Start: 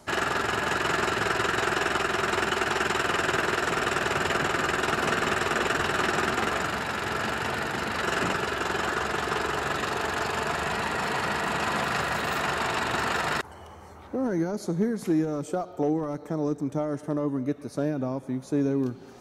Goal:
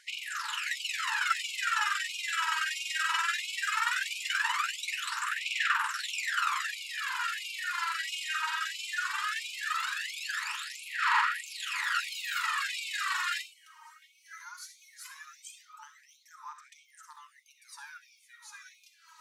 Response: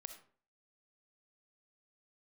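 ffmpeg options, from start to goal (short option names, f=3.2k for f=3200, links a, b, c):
-filter_complex "[0:a]aphaser=in_gain=1:out_gain=1:delay=3.2:decay=0.76:speed=0.18:type=sinusoidal[a];[1:a]atrim=start_sample=2205,afade=t=out:st=0.17:d=0.01,atrim=end_sample=7938[b];[a][b]afir=irnorm=-1:irlink=0,afftfilt=real='re*gte(b*sr/1024,830*pow(2200/830,0.5+0.5*sin(2*PI*1.5*pts/sr)))':imag='im*gte(b*sr/1024,830*pow(2200/830,0.5+0.5*sin(2*PI*1.5*pts/sr)))':win_size=1024:overlap=0.75"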